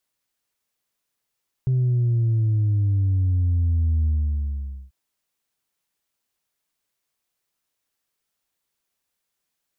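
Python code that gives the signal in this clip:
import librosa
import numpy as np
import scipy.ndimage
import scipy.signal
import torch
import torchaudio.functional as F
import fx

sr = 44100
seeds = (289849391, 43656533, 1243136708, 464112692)

y = fx.sub_drop(sr, level_db=-17.5, start_hz=130.0, length_s=3.24, drive_db=1, fade_s=0.85, end_hz=65.0)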